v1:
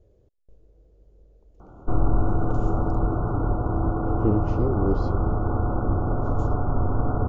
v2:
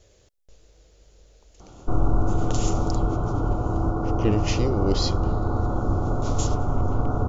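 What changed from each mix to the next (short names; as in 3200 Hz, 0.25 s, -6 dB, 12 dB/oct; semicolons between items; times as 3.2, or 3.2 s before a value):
speech: remove EQ curve 400 Hz 0 dB, 2000 Hz -21 dB, 6900 Hz -28 dB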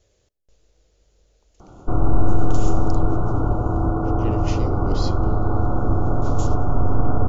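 speech -7.5 dB; reverb: on, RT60 0.95 s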